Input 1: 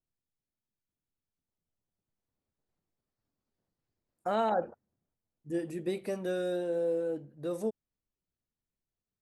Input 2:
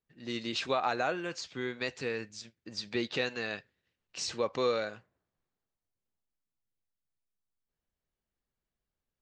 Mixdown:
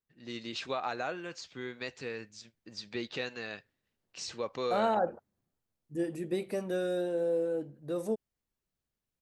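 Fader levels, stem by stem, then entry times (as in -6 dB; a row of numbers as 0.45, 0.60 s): +0.5, -4.5 dB; 0.45, 0.00 s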